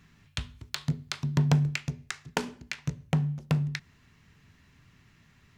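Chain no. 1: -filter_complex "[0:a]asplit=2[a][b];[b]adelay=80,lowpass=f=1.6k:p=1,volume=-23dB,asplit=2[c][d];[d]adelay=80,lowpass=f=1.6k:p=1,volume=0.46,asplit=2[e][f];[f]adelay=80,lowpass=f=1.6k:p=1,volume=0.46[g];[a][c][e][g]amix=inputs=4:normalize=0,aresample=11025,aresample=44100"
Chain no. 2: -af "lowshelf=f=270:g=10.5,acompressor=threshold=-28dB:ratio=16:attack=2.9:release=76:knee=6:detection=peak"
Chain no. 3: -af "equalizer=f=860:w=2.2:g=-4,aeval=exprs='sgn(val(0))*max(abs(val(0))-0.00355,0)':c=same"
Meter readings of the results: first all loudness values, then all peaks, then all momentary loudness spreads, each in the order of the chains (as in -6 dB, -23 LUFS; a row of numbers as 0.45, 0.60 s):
-31.0, -35.0, -31.5 LUFS; -10.5, -12.0, -10.0 dBFS; 14, 22, 14 LU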